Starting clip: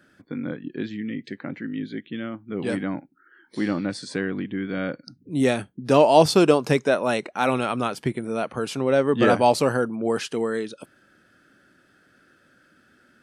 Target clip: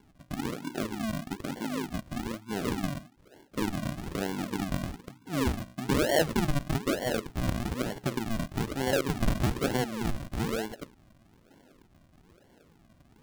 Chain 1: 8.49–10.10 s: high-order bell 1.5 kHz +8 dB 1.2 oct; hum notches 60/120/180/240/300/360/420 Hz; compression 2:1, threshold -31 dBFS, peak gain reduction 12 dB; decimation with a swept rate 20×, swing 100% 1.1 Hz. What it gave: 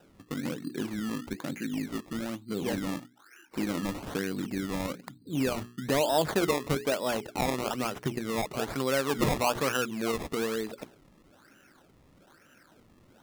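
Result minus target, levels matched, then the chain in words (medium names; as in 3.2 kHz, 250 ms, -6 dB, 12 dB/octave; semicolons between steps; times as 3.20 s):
decimation with a swept rate: distortion -18 dB
8.49–10.10 s: high-order bell 1.5 kHz +8 dB 1.2 oct; hum notches 60/120/180/240/300/360/420 Hz; compression 2:1, threshold -31 dBFS, peak gain reduction 12 dB; decimation with a swept rate 69×, swing 100% 1.1 Hz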